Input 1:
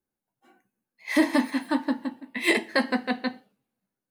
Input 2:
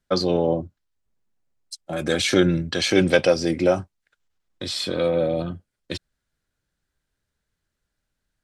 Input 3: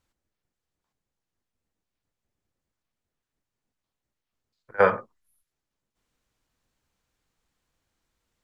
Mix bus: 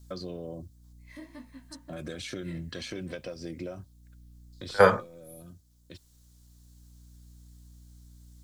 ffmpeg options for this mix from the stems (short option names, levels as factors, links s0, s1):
-filter_complex "[0:a]flanger=delay=16.5:depth=3.4:speed=2.1,volume=0.133[s0];[1:a]acompressor=threshold=0.0891:ratio=6,aeval=exprs='val(0)+0.00251*(sin(2*PI*60*n/s)+sin(2*PI*2*60*n/s)/2+sin(2*PI*3*60*n/s)/3+sin(2*PI*4*60*n/s)/4+sin(2*PI*5*60*n/s)/5)':c=same,volume=0.562[s1];[2:a]aexciter=amount=3.7:drive=8.8:freq=3600,volume=1,asplit=2[s2][s3];[s3]apad=whole_len=372099[s4];[s1][s4]sidechaincompress=threshold=0.0141:ratio=4:attack=39:release=1480[s5];[s0][s5]amix=inputs=2:normalize=0,asuperstop=centerf=820:order=4:qfactor=6.5,acompressor=threshold=0.002:ratio=1.5,volume=1[s6];[s2][s6]amix=inputs=2:normalize=0,lowshelf=f=170:g=8.5"